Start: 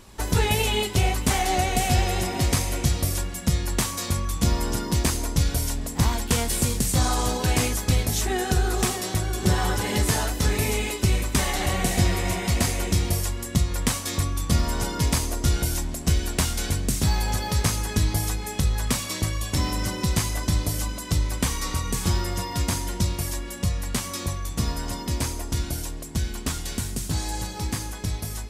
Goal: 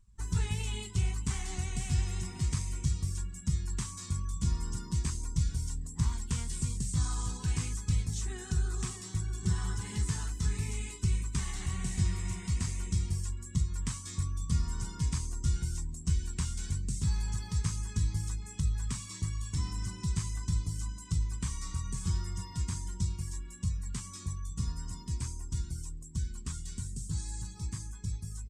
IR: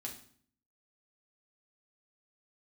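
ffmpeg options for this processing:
-filter_complex "[0:a]aemphasis=mode=production:type=50kf,acrossover=split=6500[link_01][link_02];[link_02]acompressor=threshold=-26dB:ratio=4:attack=1:release=60[link_03];[link_01][link_03]amix=inputs=2:normalize=0,afftdn=noise_reduction=17:noise_floor=-37,firequalizer=gain_entry='entry(160,0);entry(270,-13);entry(390,-12);entry(580,-28);entry(1000,-8);entry(1900,-11);entry(4100,-13);entry(8200,-6);entry(12000,-29)':delay=0.05:min_phase=1,volume=-7dB"

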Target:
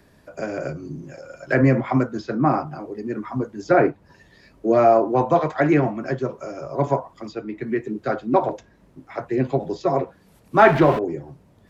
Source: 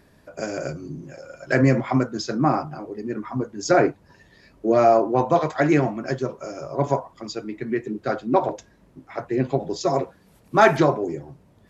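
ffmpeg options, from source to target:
ffmpeg -i in.wav -filter_complex "[0:a]asettb=1/sr,asplit=3[link_01][link_02][link_03];[link_01]atrim=end=10.594[link_04];[link_02]atrim=start=10.59:end=10.99,asetpts=PTS-STARTPTS,afade=type=in:duration=0.004:curve=qsin,afade=type=out:start_time=0.396:duration=0.004:curve=qsin,aeval=exprs='val(0)+0.5*0.0708*sgn(val(0))':channel_layout=same[link_05];[link_03]atrim=start=10.986[link_06];[link_04][link_05]acrossfade=duration=0.004:curve1=hsin:curve2=qsin[link_07];[link_07][link_06]acrossfade=duration=0.004:curve1=qsin:curve2=hsin,acrossover=split=250|470|3300[link_08][link_09][link_10][link_11];[link_11]acompressor=threshold=-55dB:ratio=5[link_12];[link_08][link_09][link_10][link_12]amix=inputs=4:normalize=0,volume=1dB" out.wav

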